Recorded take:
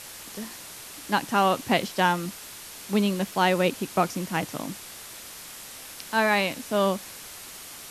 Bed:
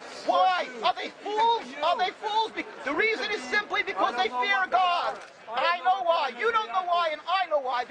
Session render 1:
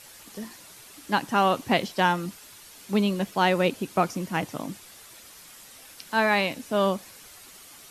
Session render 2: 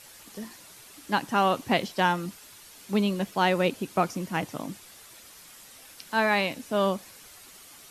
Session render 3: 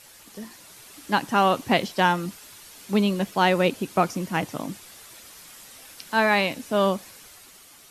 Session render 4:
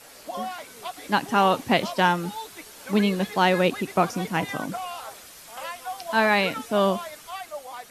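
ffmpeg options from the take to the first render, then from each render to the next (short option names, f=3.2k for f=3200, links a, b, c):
-af "afftdn=nr=8:nf=-42"
-af "volume=-1.5dB"
-af "dynaudnorm=f=110:g=13:m=3.5dB"
-filter_complex "[1:a]volume=-10.5dB[a];[0:a][a]amix=inputs=2:normalize=0"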